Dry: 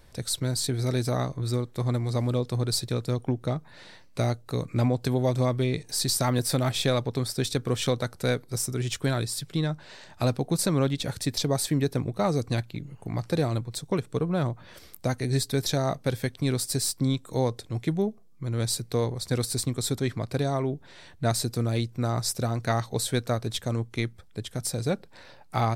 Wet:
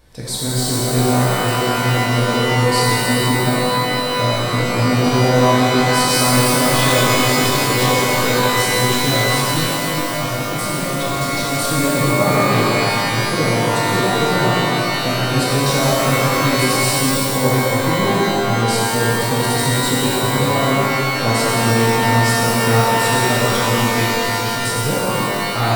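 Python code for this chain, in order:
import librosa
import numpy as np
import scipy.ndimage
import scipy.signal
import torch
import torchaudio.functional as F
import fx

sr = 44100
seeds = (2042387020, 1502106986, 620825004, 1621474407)

y = fx.clip_hard(x, sr, threshold_db=-29.0, at=(9.6, 11.57))
y = fx.rev_shimmer(y, sr, seeds[0], rt60_s=3.1, semitones=12, shimmer_db=-2, drr_db=-7.5)
y = F.gain(torch.from_numpy(y), 1.0).numpy()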